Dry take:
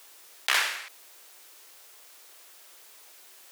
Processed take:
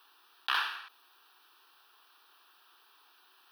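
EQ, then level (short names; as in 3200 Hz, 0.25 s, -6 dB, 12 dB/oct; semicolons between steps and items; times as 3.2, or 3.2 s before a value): tone controls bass -13 dB, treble -14 dB; fixed phaser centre 2100 Hz, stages 6; 0.0 dB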